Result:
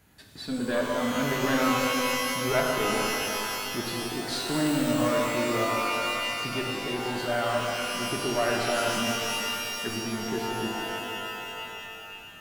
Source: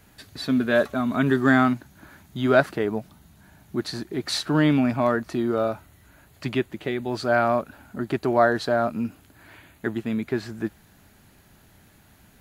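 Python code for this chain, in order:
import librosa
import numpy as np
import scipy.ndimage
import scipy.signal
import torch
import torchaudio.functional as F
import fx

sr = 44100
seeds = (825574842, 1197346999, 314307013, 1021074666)

y = fx.diode_clip(x, sr, knee_db=-19.5)
y = fx.rev_shimmer(y, sr, seeds[0], rt60_s=3.1, semitones=12, shimmer_db=-2, drr_db=-0.5)
y = F.gain(torch.from_numpy(y), -6.5).numpy()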